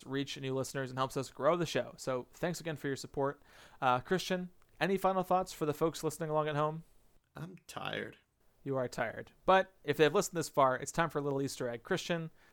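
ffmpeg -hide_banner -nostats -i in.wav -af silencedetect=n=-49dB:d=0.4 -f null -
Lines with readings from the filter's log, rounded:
silence_start: 6.81
silence_end: 7.36 | silence_duration: 0.55
silence_start: 8.14
silence_end: 8.66 | silence_duration: 0.52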